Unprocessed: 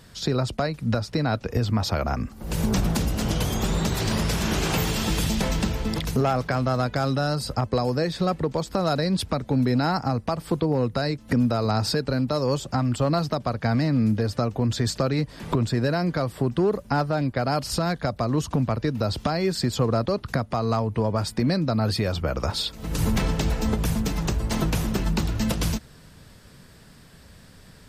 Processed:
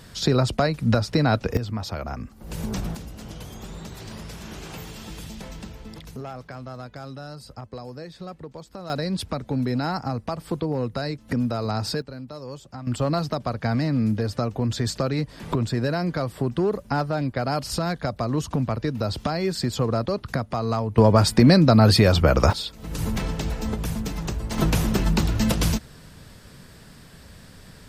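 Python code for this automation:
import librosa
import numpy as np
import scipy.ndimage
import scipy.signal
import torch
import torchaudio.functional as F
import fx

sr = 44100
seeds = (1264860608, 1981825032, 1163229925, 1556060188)

y = fx.gain(x, sr, db=fx.steps((0.0, 4.0), (1.57, -6.0), (2.95, -13.5), (8.9, -3.0), (12.02, -13.0), (12.87, -1.0), (20.98, 8.5), (22.53, -3.5), (24.58, 3.0)))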